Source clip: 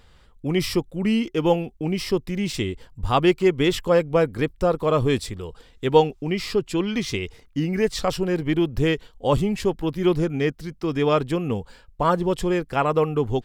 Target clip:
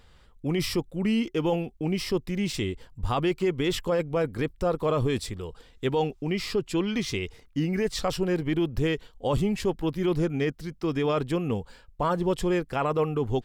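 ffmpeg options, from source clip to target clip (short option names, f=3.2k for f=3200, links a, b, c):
-af "alimiter=limit=-14dB:level=0:latency=1:release=11,volume=-2.5dB"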